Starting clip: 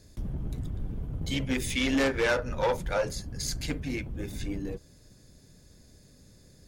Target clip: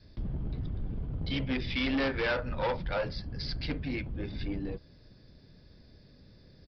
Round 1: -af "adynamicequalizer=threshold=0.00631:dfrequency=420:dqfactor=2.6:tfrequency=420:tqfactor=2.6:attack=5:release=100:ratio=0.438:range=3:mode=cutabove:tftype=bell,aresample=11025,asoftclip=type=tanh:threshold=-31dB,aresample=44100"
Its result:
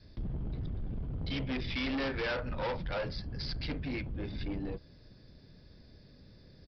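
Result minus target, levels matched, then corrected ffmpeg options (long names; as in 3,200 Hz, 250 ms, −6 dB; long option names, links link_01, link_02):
soft clipping: distortion +7 dB
-af "adynamicequalizer=threshold=0.00631:dfrequency=420:dqfactor=2.6:tfrequency=420:tqfactor=2.6:attack=5:release=100:ratio=0.438:range=3:mode=cutabove:tftype=bell,aresample=11025,asoftclip=type=tanh:threshold=-24.5dB,aresample=44100"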